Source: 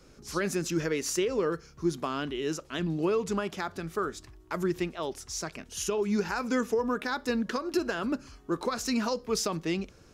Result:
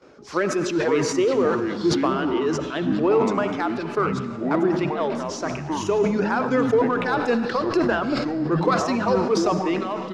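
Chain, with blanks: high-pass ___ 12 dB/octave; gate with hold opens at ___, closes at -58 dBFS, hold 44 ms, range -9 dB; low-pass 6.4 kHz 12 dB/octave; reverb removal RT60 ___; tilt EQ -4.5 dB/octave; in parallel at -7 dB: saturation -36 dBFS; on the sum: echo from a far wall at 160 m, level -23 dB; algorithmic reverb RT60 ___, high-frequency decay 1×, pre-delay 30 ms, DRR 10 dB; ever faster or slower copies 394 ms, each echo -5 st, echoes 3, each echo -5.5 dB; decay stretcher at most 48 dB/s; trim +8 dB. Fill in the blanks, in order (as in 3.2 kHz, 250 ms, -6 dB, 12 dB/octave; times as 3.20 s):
570 Hz, -53 dBFS, 1.5 s, 1.6 s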